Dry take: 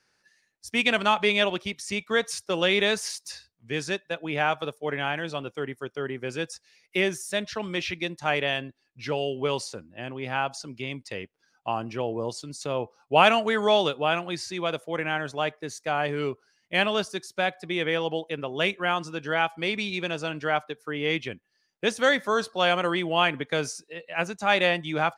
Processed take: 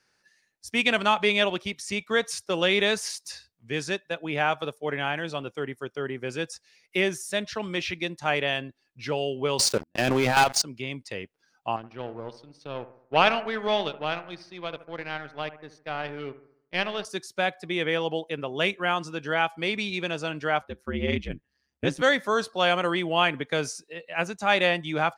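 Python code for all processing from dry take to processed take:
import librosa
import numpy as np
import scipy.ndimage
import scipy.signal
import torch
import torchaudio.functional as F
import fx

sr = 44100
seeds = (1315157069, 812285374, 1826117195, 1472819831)

y = fx.chain(x, sr, fx.low_shelf(hz=110.0, db=-8.0),
    fx.level_steps(step_db=13),
    fx.leveller(passes=5), at=(9.59, 10.62))
y = fx.chain(y, sr, fx.power_curve(exponent=1.4),
    fx.savgol(points=15),
    fx.echo_bbd(ms=72, stages=1024, feedback_pct=47, wet_db=-14), at=(11.76, 17.05))
y = fx.chain(y, sr, fx.bass_treble(bass_db=13, treble_db=-4),
    fx.ring_mod(carrier_hz=67.0), at=(20.61, 22.02))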